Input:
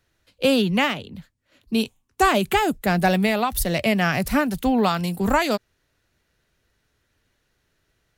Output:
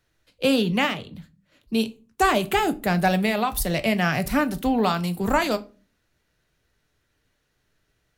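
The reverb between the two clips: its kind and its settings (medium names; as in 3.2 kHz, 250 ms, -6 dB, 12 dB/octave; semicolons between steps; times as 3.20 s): simulated room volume 190 m³, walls furnished, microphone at 0.44 m; trim -2 dB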